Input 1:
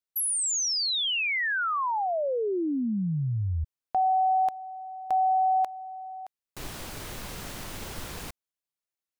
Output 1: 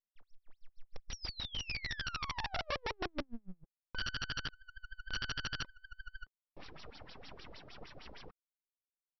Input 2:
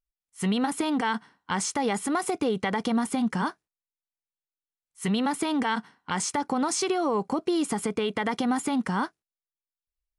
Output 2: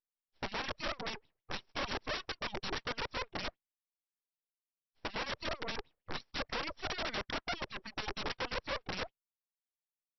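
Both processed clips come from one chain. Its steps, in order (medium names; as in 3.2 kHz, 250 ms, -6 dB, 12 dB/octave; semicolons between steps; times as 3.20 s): LFO band-pass sine 6.5 Hz 200–2400 Hz; full-wave rectifier; reverb removal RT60 1.1 s; integer overflow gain 32.5 dB; brick-wall FIR low-pass 5.8 kHz; trim +2.5 dB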